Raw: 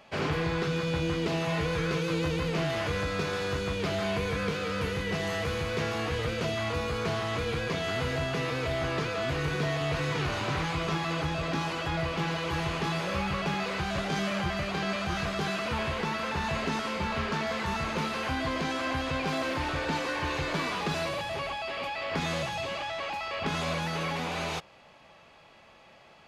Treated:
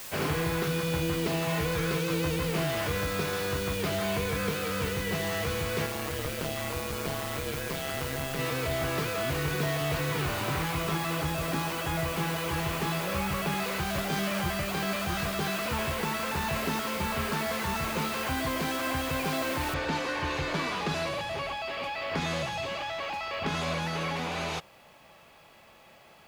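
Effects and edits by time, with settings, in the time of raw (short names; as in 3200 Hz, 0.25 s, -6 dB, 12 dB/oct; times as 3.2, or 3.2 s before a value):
5.86–8.39 AM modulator 140 Hz, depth 60%
9.98–13.52 high shelf 8300 Hz -9.5 dB
19.74 noise floor step -42 dB -68 dB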